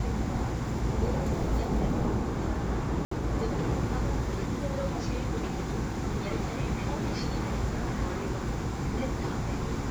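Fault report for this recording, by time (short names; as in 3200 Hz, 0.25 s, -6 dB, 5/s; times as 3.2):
3.05–3.11 gap 64 ms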